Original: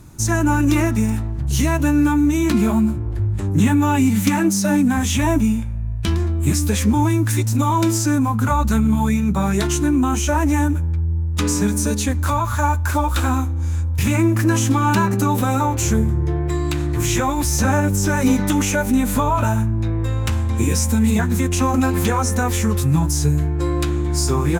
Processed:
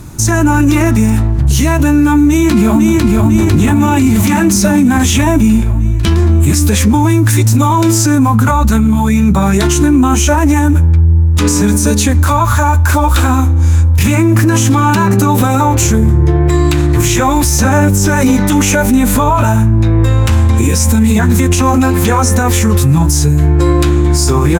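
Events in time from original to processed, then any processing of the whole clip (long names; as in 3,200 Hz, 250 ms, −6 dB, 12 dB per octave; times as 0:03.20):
0:02.25–0:03.23: delay throw 500 ms, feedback 65%, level −1.5 dB
whole clip: boost into a limiter +13.5 dB; level −1 dB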